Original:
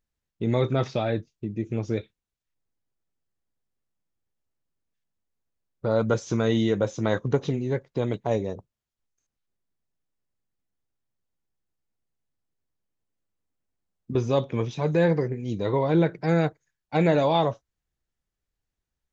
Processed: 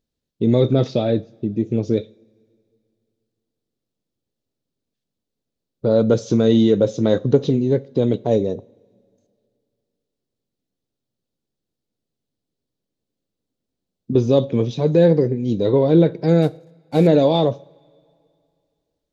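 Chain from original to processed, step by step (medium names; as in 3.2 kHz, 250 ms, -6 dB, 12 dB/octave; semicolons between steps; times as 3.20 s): 16.42–17.07 s: CVSD coder 64 kbps; in parallel at -11.5 dB: saturation -26 dBFS, distortion -7 dB; on the sum: graphic EQ 125/250/500/1000/2000/4000 Hz +5/+10/+9/-3/-4/+9 dB; two-slope reverb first 0.42 s, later 2.5 s, from -20 dB, DRR 16.5 dB; trim -2.5 dB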